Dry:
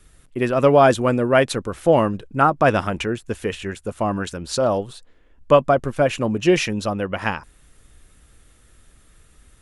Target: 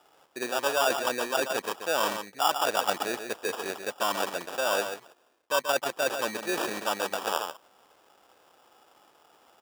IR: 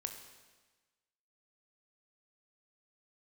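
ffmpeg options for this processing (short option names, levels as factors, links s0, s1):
-af "equalizer=f=1300:t=o:w=0.6:g=7,areverse,acompressor=threshold=0.0708:ratio=5,areverse,highshelf=f=7200:g=-5,aecho=1:1:135:0.422,acrusher=samples=21:mix=1:aa=0.000001,highpass=490"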